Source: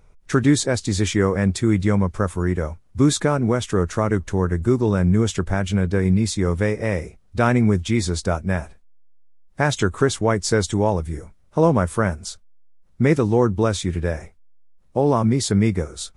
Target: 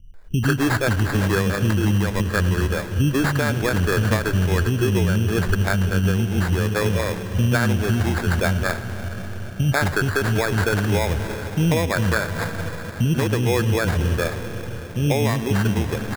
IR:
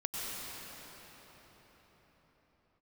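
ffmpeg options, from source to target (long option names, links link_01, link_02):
-filter_complex "[0:a]lowshelf=frequency=95:gain=8.5,acrossover=split=280[link_01][link_02];[link_02]adelay=140[link_03];[link_01][link_03]amix=inputs=2:normalize=0,asplit=2[link_04][link_05];[1:a]atrim=start_sample=2205,adelay=105[link_06];[link_05][link_06]afir=irnorm=-1:irlink=0,volume=-15.5dB[link_07];[link_04][link_07]amix=inputs=2:normalize=0,alimiter=limit=-13dB:level=0:latency=1:release=249,acrusher=samples=15:mix=1:aa=0.000001,equalizer=frequency=1600:width_type=o:width=0.28:gain=10.5,volume=2dB"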